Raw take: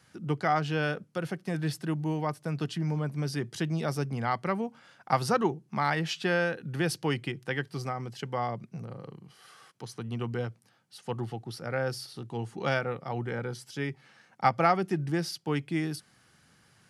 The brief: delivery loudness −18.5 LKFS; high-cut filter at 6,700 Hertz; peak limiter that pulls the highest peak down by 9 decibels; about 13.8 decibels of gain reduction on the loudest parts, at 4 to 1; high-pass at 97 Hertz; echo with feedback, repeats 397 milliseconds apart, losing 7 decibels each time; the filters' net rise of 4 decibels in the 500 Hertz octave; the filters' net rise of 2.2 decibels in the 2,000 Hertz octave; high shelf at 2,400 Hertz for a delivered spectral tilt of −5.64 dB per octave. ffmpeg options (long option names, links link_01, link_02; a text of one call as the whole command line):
ffmpeg -i in.wav -af "highpass=97,lowpass=6700,equalizer=frequency=500:width_type=o:gain=5,equalizer=frequency=2000:width_type=o:gain=6.5,highshelf=frequency=2400:gain=-8.5,acompressor=threshold=-34dB:ratio=4,alimiter=level_in=5dB:limit=-24dB:level=0:latency=1,volume=-5dB,aecho=1:1:397|794|1191|1588|1985:0.447|0.201|0.0905|0.0407|0.0183,volume=21.5dB" out.wav